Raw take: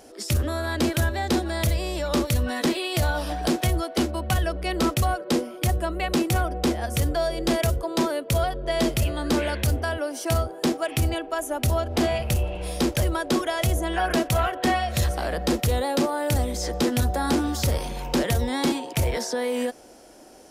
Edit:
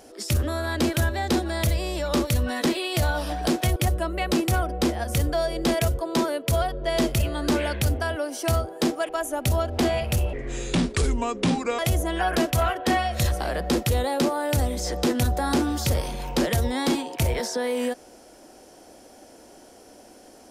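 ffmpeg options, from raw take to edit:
ffmpeg -i in.wav -filter_complex "[0:a]asplit=5[link_01][link_02][link_03][link_04][link_05];[link_01]atrim=end=3.762[link_06];[link_02]atrim=start=5.578:end=10.912[link_07];[link_03]atrim=start=11.268:end=12.514[link_08];[link_04]atrim=start=12.51:end=13.56,asetpts=PTS-STARTPTS,asetrate=31752,aresample=44100,atrim=end_sample=64312,asetpts=PTS-STARTPTS[link_09];[link_05]atrim=start=13.556[link_10];[link_06][link_07]acrossfade=duration=0.004:curve1=hsin:curve2=hsin[link_11];[link_11][link_08]acrossfade=duration=0.004:curve1=hsin:curve2=hsin[link_12];[link_12][link_09]acrossfade=duration=0.004:curve1=hsin:curve2=hsin[link_13];[link_13][link_10]acrossfade=duration=0.004:curve1=hsin:curve2=hsin" out.wav

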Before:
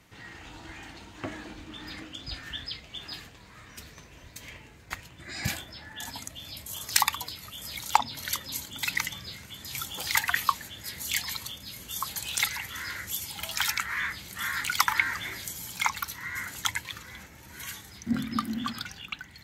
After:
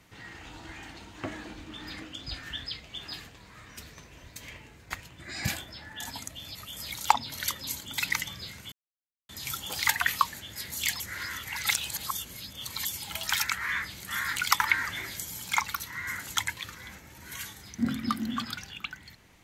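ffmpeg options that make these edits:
ffmpeg -i in.wav -filter_complex "[0:a]asplit=5[link_01][link_02][link_03][link_04][link_05];[link_01]atrim=end=6.552[link_06];[link_02]atrim=start=7.398:end=9.57,asetpts=PTS-STARTPTS,afade=type=out:start_time=2.168:duration=0.004:curve=hsin,apad=pad_dur=0.57[link_07];[link_03]atrim=start=9.57:end=11.282,asetpts=PTS-STARTPTS,afade=type=in:duration=0.004:curve=hsin[link_08];[link_04]atrim=start=11.278:end=13.132,asetpts=PTS-STARTPTS,areverse[link_09];[link_05]atrim=start=13.128[link_10];[link_07][link_08]concat=n=2:v=0:a=1[link_11];[link_06][link_11]acrossfade=duration=0.004:curve1=hsin:curve2=hsin[link_12];[link_12][link_09]acrossfade=duration=0.004:curve1=hsin:curve2=hsin[link_13];[link_13][link_10]acrossfade=duration=0.004:curve1=hsin:curve2=hsin" out.wav

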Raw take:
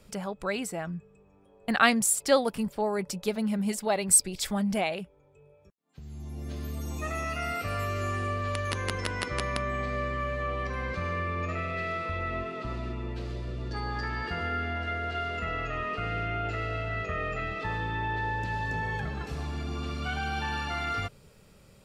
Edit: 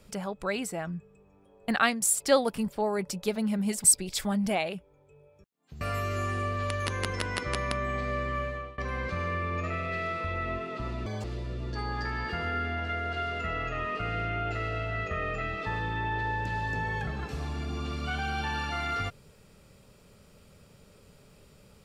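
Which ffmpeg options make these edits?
ffmpeg -i in.wav -filter_complex "[0:a]asplit=7[link_01][link_02][link_03][link_04][link_05][link_06][link_07];[link_01]atrim=end=2.02,asetpts=PTS-STARTPTS,afade=type=out:start_time=1.71:duration=0.31:silence=0.298538[link_08];[link_02]atrim=start=2.02:end=3.842,asetpts=PTS-STARTPTS,afade=type=in:duration=0.004:curve=hsin:silence=0.298538[link_09];[link_03]atrim=start=4.098:end=6.072[link_10];[link_04]atrim=start=7.658:end=10.63,asetpts=PTS-STARTPTS,afade=type=out:start_time=2.602:duration=0.37:silence=0.0630957[link_11];[link_05]atrim=start=10.63:end=12.914,asetpts=PTS-STARTPTS,afade=type=in:duration=0.004:curve=hsin:silence=0.0630957[link_12];[link_06]atrim=start=12.91:end=13.22,asetpts=PTS-STARTPTS,asetrate=76293,aresample=44100,atrim=end_sample=7902,asetpts=PTS-STARTPTS[link_13];[link_07]atrim=start=13.216[link_14];[link_08][link_09]concat=n=2:v=0:a=1[link_15];[link_15][link_10]acrossfade=duration=0.004:curve1=hsin:curve2=hsin[link_16];[link_11][link_12]concat=n=2:v=0:a=1[link_17];[link_16][link_17]acrossfade=duration=0.004:curve1=hsin:curve2=hsin[link_18];[link_18][link_13]acrossfade=duration=0.004:curve1=hsin:curve2=hsin[link_19];[link_19][link_14]acrossfade=duration=0.004:curve1=hsin:curve2=hsin" out.wav

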